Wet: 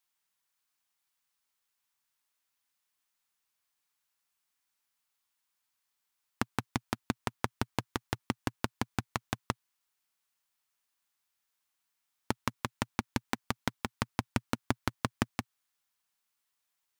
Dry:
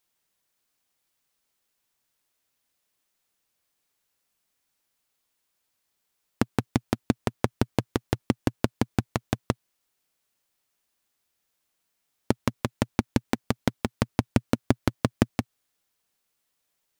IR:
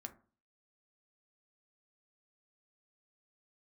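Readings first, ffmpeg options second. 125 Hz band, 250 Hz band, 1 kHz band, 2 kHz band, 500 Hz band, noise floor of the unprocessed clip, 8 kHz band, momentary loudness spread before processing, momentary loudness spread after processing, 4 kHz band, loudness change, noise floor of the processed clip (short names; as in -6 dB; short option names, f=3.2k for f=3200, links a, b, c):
-9.5 dB, -10.0 dB, -3.0 dB, -2.0 dB, -10.5 dB, -78 dBFS, -3.0 dB, 5 LU, 4 LU, -2.5 dB, -7.5 dB, -83 dBFS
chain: -filter_complex "[0:a]lowshelf=f=740:t=q:w=1.5:g=-6.5,asplit=2[a][b];[b]aeval=exprs='val(0)*gte(abs(val(0)),0.0112)':c=same,volume=-11.5dB[c];[a][c]amix=inputs=2:normalize=0,volume=-5dB"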